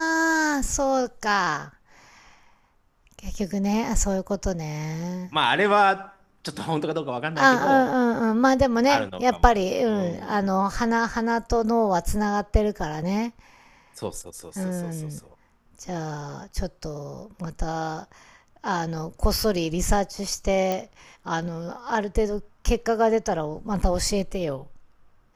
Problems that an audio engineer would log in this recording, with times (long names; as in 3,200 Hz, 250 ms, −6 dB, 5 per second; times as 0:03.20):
0:20.72: click −13 dBFS